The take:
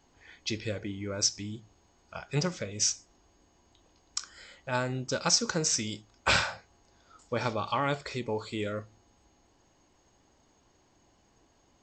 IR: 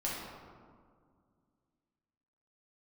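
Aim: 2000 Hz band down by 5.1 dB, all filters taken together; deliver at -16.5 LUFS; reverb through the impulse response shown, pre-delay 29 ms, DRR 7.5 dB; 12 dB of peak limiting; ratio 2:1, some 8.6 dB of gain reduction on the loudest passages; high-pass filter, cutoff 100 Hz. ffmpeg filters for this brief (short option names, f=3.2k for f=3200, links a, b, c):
-filter_complex "[0:a]highpass=100,equalizer=f=2k:t=o:g=-7.5,acompressor=threshold=-36dB:ratio=2,alimiter=level_in=4.5dB:limit=-24dB:level=0:latency=1,volume=-4.5dB,asplit=2[a][b];[1:a]atrim=start_sample=2205,adelay=29[c];[b][c]afir=irnorm=-1:irlink=0,volume=-12dB[d];[a][d]amix=inputs=2:normalize=0,volume=24dB"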